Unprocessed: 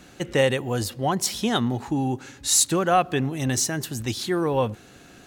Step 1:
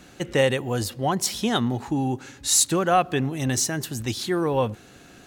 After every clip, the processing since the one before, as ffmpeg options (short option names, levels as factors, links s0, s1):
-af anull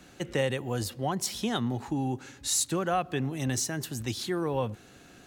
-filter_complex "[0:a]acrossover=split=170[s0][s1];[s1]acompressor=threshold=0.0501:ratio=1.5[s2];[s0][s2]amix=inputs=2:normalize=0,volume=0.596"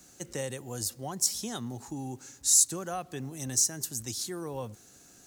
-af "highshelf=f=4400:t=q:w=1.5:g=12,acrusher=bits=8:mix=0:aa=0.5,volume=0.422"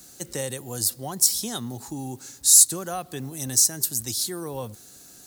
-af "aexciter=amount=1.8:drive=4.4:freq=3600,volume=1.58"